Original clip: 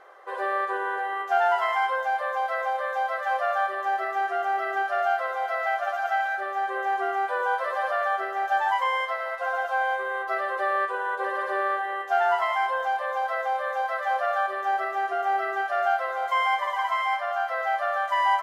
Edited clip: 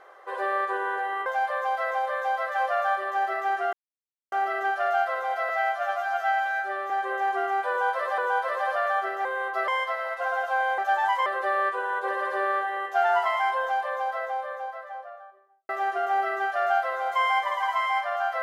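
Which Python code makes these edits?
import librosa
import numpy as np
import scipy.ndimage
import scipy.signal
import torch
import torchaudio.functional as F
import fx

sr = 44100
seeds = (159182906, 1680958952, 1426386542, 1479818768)

y = fx.studio_fade_out(x, sr, start_s=12.75, length_s=2.1)
y = fx.edit(y, sr, fx.cut(start_s=1.26, length_s=0.71),
    fx.insert_silence(at_s=4.44, length_s=0.59),
    fx.stretch_span(start_s=5.61, length_s=0.94, factor=1.5),
    fx.repeat(start_s=7.34, length_s=0.49, count=2),
    fx.swap(start_s=8.41, length_s=0.48, other_s=9.99, other_length_s=0.43), tone=tone)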